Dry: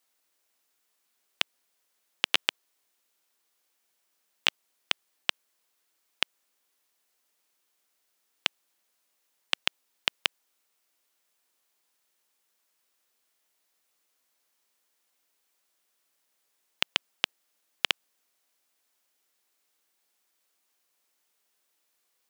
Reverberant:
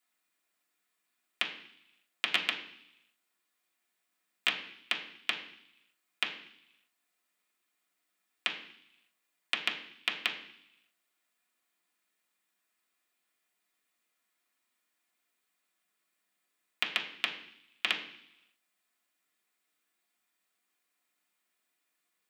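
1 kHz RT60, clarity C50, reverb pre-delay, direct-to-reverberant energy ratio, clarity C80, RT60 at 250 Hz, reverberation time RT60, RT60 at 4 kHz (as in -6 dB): 0.75 s, 9.5 dB, 3 ms, -3.0 dB, 12.0 dB, 0.90 s, 0.70 s, 1.0 s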